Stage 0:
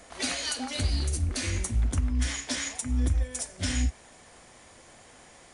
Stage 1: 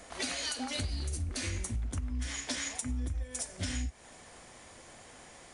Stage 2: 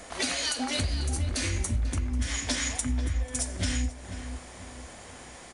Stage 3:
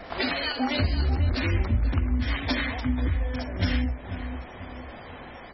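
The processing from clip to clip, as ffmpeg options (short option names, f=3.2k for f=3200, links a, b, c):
-af "acompressor=threshold=-32dB:ratio=6"
-filter_complex "[0:a]asplit=2[a][b];[b]adelay=491,lowpass=f=1.7k:p=1,volume=-9dB,asplit=2[c][d];[d]adelay=491,lowpass=f=1.7k:p=1,volume=0.42,asplit=2[e][f];[f]adelay=491,lowpass=f=1.7k:p=1,volume=0.42,asplit=2[g][h];[h]adelay=491,lowpass=f=1.7k:p=1,volume=0.42,asplit=2[i][j];[j]adelay=491,lowpass=f=1.7k:p=1,volume=0.42[k];[a][c][e][g][i][k]amix=inputs=6:normalize=0,volume=6dB"
-af "highshelf=f=3.9k:g=-12,bandreject=f=60:t=h:w=6,bandreject=f=120:t=h:w=6,bandreject=f=180:t=h:w=6,bandreject=f=240:t=h:w=6,bandreject=f=300:t=h:w=6,bandreject=f=360:t=h:w=6,bandreject=f=420:t=h:w=6,bandreject=f=480:t=h:w=6,bandreject=f=540:t=h:w=6,bandreject=f=600:t=h:w=6,volume=6.5dB" -ar 24000 -c:a libmp3lame -b:a 16k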